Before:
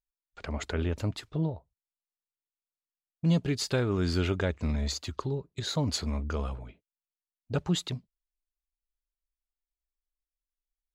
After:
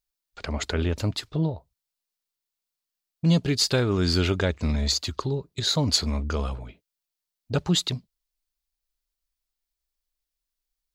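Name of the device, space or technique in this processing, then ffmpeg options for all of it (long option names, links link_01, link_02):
presence and air boost: -af "equalizer=frequency=4500:width_type=o:width=0.94:gain=6,highshelf=frequency=10000:gain=6.5,volume=4.5dB"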